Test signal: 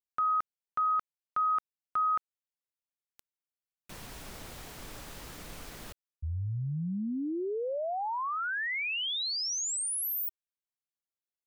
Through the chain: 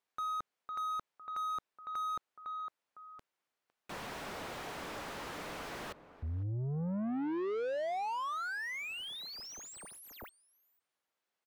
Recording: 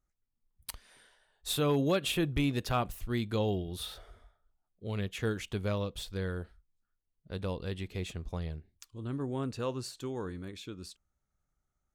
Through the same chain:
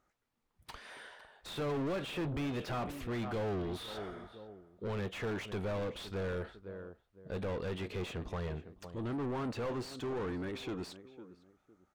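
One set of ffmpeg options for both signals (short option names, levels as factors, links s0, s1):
-filter_complex "[0:a]asplit=2[s0][s1];[s1]adelay=506,lowpass=f=950:p=1,volume=0.112,asplit=2[s2][s3];[s3]adelay=506,lowpass=f=950:p=1,volume=0.29[s4];[s0][s2][s4]amix=inputs=3:normalize=0,acrossover=split=7300[s5][s6];[s6]acompressor=threshold=0.00631:ratio=4:attack=1:release=60[s7];[s5][s7]amix=inputs=2:normalize=0,asplit=2[s8][s9];[s9]highpass=f=720:p=1,volume=50.1,asoftclip=type=tanh:threshold=0.106[s10];[s8][s10]amix=inputs=2:normalize=0,lowpass=f=1100:p=1,volume=0.501,volume=0.355"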